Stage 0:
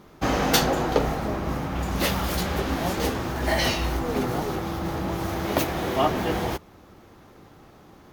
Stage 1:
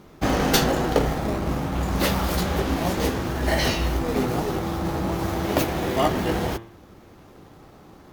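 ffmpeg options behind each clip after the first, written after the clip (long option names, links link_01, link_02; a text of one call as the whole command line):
ffmpeg -i in.wav -filter_complex "[0:a]asplit=2[link_01][link_02];[link_02]acrusher=samples=25:mix=1:aa=0.000001:lfo=1:lforange=25:lforate=0.35,volume=-7.5dB[link_03];[link_01][link_03]amix=inputs=2:normalize=0,bandreject=frequency=114:width_type=h:width=4,bandreject=frequency=228:width_type=h:width=4,bandreject=frequency=342:width_type=h:width=4,bandreject=frequency=456:width_type=h:width=4,bandreject=frequency=570:width_type=h:width=4,bandreject=frequency=684:width_type=h:width=4,bandreject=frequency=798:width_type=h:width=4,bandreject=frequency=912:width_type=h:width=4,bandreject=frequency=1026:width_type=h:width=4,bandreject=frequency=1140:width_type=h:width=4,bandreject=frequency=1254:width_type=h:width=4,bandreject=frequency=1368:width_type=h:width=4,bandreject=frequency=1482:width_type=h:width=4,bandreject=frequency=1596:width_type=h:width=4,bandreject=frequency=1710:width_type=h:width=4,bandreject=frequency=1824:width_type=h:width=4,bandreject=frequency=1938:width_type=h:width=4,bandreject=frequency=2052:width_type=h:width=4,bandreject=frequency=2166:width_type=h:width=4,bandreject=frequency=2280:width_type=h:width=4,bandreject=frequency=2394:width_type=h:width=4,bandreject=frequency=2508:width_type=h:width=4,bandreject=frequency=2622:width_type=h:width=4,bandreject=frequency=2736:width_type=h:width=4,bandreject=frequency=2850:width_type=h:width=4,bandreject=frequency=2964:width_type=h:width=4,bandreject=frequency=3078:width_type=h:width=4,bandreject=frequency=3192:width_type=h:width=4,bandreject=frequency=3306:width_type=h:width=4,bandreject=frequency=3420:width_type=h:width=4,bandreject=frequency=3534:width_type=h:width=4,bandreject=frequency=3648:width_type=h:width=4" out.wav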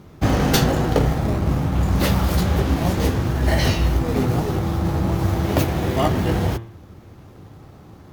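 ffmpeg -i in.wav -af "equalizer=frequency=100:width_type=o:width=1.5:gain=11.5" out.wav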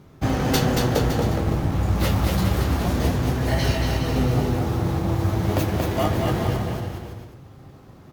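ffmpeg -i in.wav -filter_complex "[0:a]flanger=delay=7.3:depth=2.3:regen=64:speed=0.27:shape=triangular,asplit=2[link_01][link_02];[link_02]aecho=0:1:230|414|561.2|679|773.2:0.631|0.398|0.251|0.158|0.1[link_03];[link_01][link_03]amix=inputs=2:normalize=0" out.wav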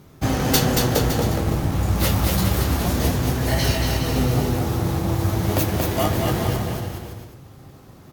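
ffmpeg -i in.wav -af "aemphasis=mode=production:type=cd,volume=1dB" out.wav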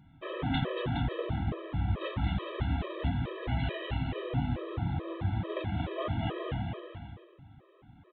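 ffmpeg -i in.wav -af "aresample=8000,aresample=44100,afftfilt=real='re*gt(sin(2*PI*2.3*pts/sr)*(1-2*mod(floor(b*sr/1024/330),2)),0)':imag='im*gt(sin(2*PI*2.3*pts/sr)*(1-2*mod(floor(b*sr/1024/330),2)),0)':win_size=1024:overlap=0.75,volume=-8.5dB" out.wav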